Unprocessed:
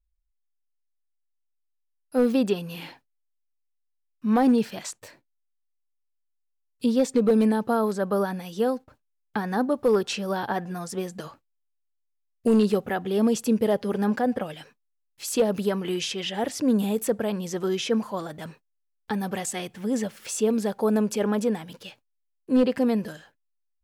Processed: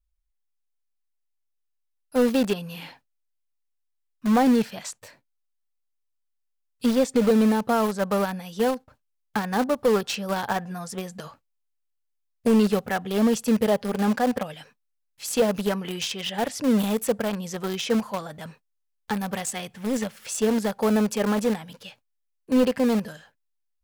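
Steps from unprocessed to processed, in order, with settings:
parametric band 340 Hz −8.5 dB 0.49 octaves
in parallel at −9.5 dB: bit reduction 4 bits

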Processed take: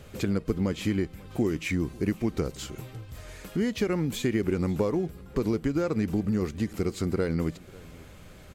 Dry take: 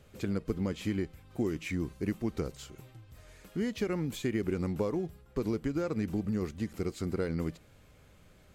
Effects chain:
in parallel at +3 dB: downward compressor, threshold −43 dBFS, peak gain reduction 16 dB
on the sum: single-tap delay 545 ms −23 dB
level +3 dB

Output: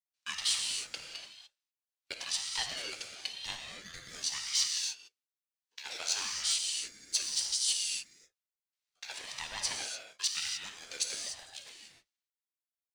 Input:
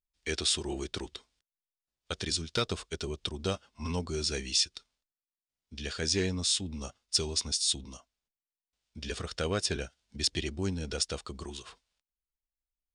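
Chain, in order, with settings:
high-pass filter 1,400 Hz 12 dB per octave
leveller curve on the samples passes 1
reverb whose tail is shaped and stops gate 320 ms flat, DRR 0.5 dB
ring modulator whose carrier an LFO sweeps 710 Hz, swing 35%, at 1 Hz
level −3 dB

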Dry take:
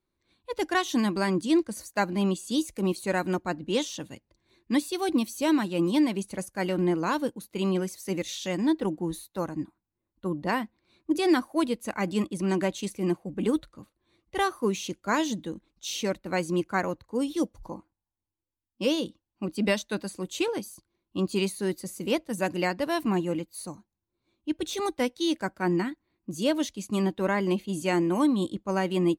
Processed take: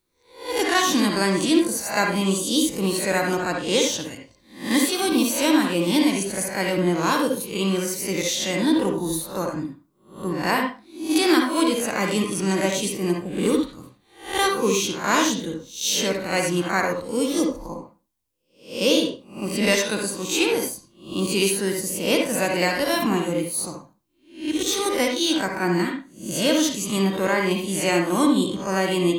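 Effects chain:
peak hold with a rise ahead of every peak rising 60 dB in 0.43 s
high-shelf EQ 3,700 Hz +11 dB
on a send: convolution reverb RT60 0.30 s, pre-delay 48 ms, DRR 2 dB
on the sum: level +2 dB

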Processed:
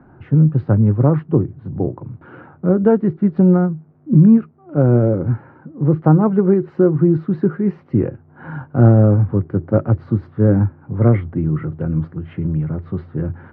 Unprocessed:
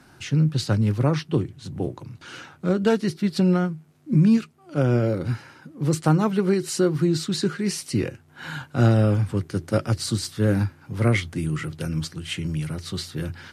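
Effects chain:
Bessel low-pass filter 900 Hz, order 4
level +7.5 dB

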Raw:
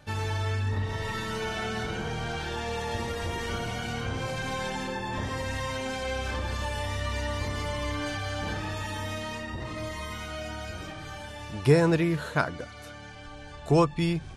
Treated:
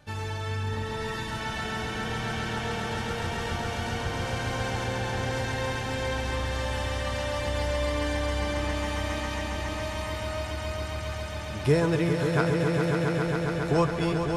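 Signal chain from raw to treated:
echo that builds up and dies away 136 ms, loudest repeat 5, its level −7 dB
level −2.5 dB

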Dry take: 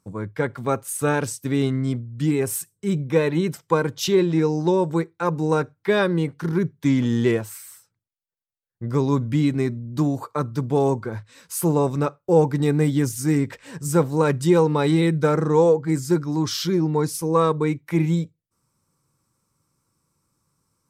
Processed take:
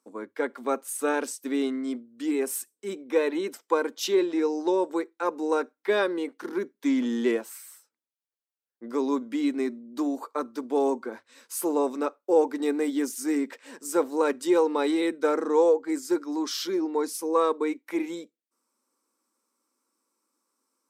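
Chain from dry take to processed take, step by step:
elliptic high-pass filter 240 Hz, stop band 40 dB
level −3.5 dB

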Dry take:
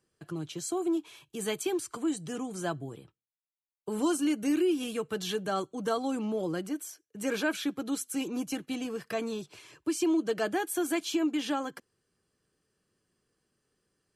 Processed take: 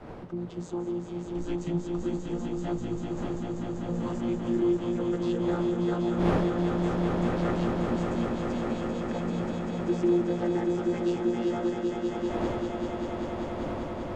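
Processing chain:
channel vocoder with a chord as carrier bare fifth, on A#2
wind on the microphone 570 Hz −41 dBFS
in parallel at 0 dB: downward compressor, threshold −43 dBFS, peak gain reduction 21 dB
0:01.22–0:02.03: on the sum: frequency shifter −180 Hz
echo that builds up and dies away 195 ms, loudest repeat 5, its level −6 dB
level −2 dB

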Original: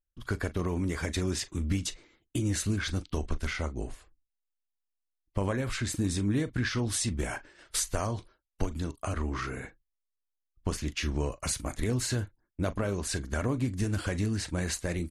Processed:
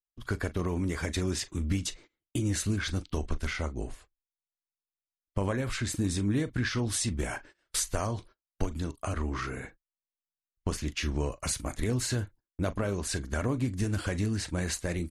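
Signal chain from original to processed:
noise gate −50 dBFS, range −20 dB

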